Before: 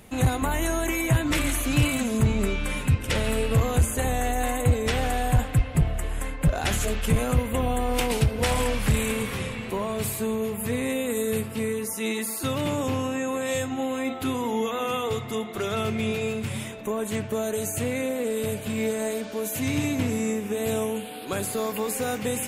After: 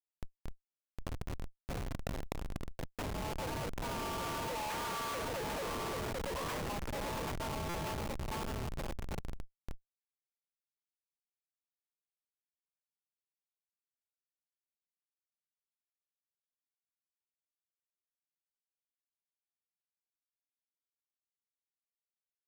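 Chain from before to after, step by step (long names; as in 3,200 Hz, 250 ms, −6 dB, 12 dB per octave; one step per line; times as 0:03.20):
source passing by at 0:05.44, 13 m/s, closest 9.1 metres
high-frequency loss of the air 390 metres
ring modulation 400 Hz
high-pass filter 750 Hz 24 dB per octave
on a send: repeating echo 785 ms, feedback 19%, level −7 dB
on the sum: comparator with hysteresis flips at −42.5 dBFS
in parallel at +1 dB: compressor whose output falls as the input rises −56 dBFS, ratio −0.5
on the sum: buffer that repeats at 0:07.69, samples 256, times 8
level +8 dB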